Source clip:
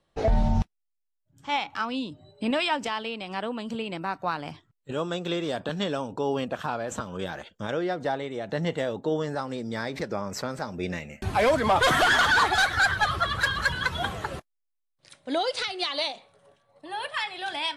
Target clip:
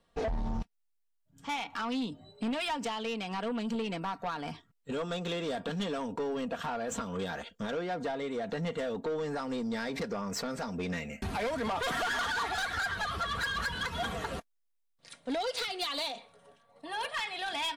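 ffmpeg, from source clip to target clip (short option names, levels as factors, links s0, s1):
-af "acompressor=threshold=0.0447:ratio=10,aecho=1:1:4.3:0.5,asoftclip=type=tanh:threshold=0.0398"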